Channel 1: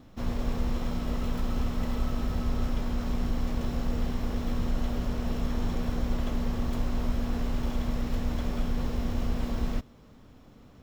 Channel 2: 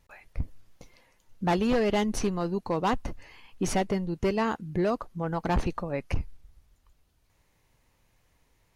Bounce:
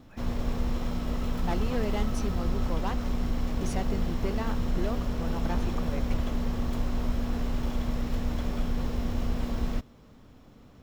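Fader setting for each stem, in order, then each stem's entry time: 0.0 dB, -8.0 dB; 0.00 s, 0.00 s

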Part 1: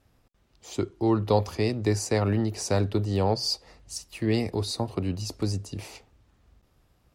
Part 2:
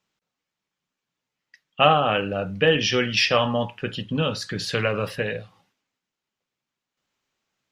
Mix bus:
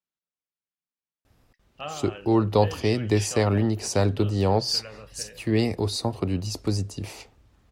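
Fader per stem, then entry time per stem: +2.5 dB, -19.0 dB; 1.25 s, 0.00 s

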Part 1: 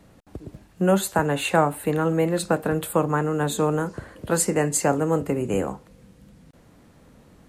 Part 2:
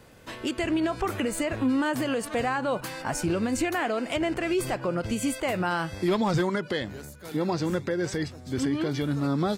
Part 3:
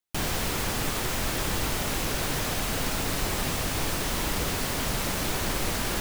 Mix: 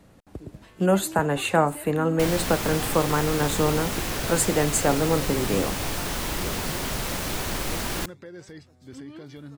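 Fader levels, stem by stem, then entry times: -1.0 dB, -14.0 dB, -0.5 dB; 0.00 s, 0.35 s, 2.05 s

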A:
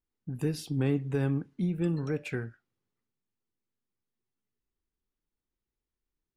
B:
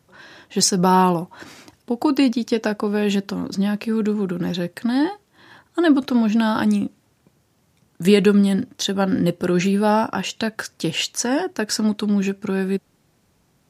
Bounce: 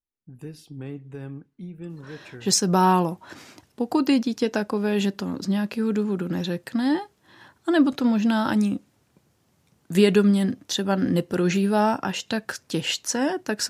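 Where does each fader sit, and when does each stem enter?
-8.0 dB, -3.0 dB; 0.00 s, 1.90 s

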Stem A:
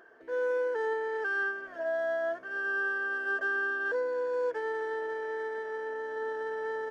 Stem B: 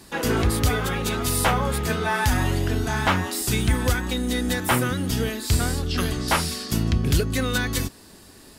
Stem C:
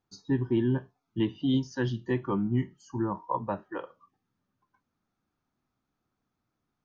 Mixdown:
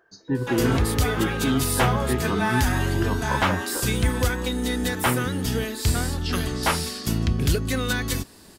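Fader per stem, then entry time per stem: -6.5 dB, -1.0 dB, +2.0 dB; 0.00 s, 0.35 s, 0.00 s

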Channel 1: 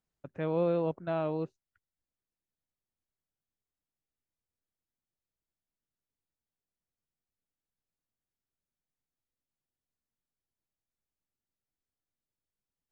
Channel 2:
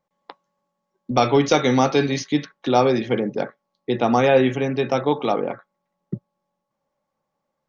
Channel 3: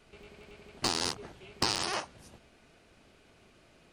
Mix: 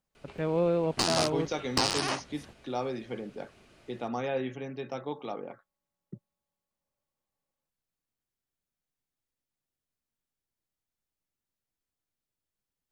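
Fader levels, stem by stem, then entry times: +2.0 dB, -16.0 dB, +2.0 dB; 0.00 s, 0.00 s, 0.15 s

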